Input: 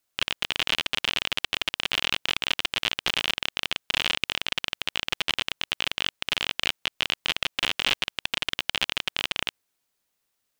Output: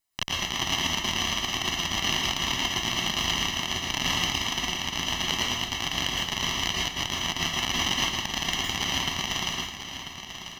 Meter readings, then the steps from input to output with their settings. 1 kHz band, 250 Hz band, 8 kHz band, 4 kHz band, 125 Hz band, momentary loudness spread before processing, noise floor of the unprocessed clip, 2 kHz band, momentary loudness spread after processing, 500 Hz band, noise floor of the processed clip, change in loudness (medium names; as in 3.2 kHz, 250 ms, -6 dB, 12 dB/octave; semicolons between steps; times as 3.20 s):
+4.5 dB, +8.5 dB, +9.5 dB, +0.5 dB, +10.5 dB, 3 LU, -78 dBFS, -1.0 dB, 3 LU, +1.5 dB, -40 dBFS, +0.5 dB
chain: comb filter that takes the minimum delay 1 ms; bass shelf 110 Hz -6.5 dB; on a send: feedback delay 991 ms, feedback 41%, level -10.5 dB; on the sum: plate-style reverb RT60 0.53 s, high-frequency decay 0.95×, pre-delay 100 ms, DRR -3 dB; trim -1.5 dB